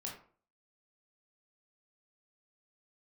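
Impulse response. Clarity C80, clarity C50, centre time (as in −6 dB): 10.5 dB, 5.5 dB, 30 ms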